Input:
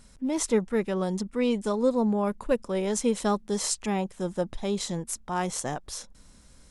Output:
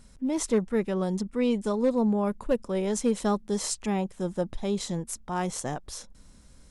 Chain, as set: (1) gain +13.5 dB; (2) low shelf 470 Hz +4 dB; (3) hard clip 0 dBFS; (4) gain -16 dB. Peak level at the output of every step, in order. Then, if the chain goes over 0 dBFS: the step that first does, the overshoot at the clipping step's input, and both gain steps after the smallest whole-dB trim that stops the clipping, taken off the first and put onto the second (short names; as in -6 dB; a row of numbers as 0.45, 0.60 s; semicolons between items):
+2.5, +3.5, 0.0, -16.0 dBFS; step 1, 3.5 dB; step 1 +9.5 dB, step 4 -12 dB